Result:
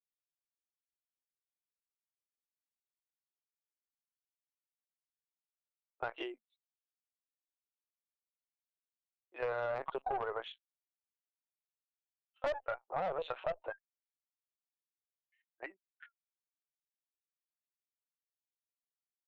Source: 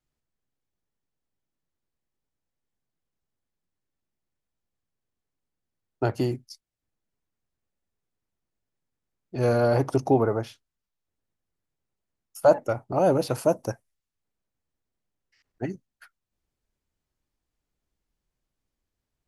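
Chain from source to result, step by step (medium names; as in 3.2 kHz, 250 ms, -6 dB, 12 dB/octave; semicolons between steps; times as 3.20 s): expander on every frequency bin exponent 1.5; treble shelf 2.5 kHz -3 dB; LPC vocoder at 8 kHz pitch kept; high-pass 610 Hz 24 dB/octave; valve stage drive 26 dB, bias 0.4; peak limiter -29.5 dBFS, peak gain reduction 5.5 dB; compression, threshold -39 dBFS, peak gain reduction 7.5 dB; trim +6.5 dB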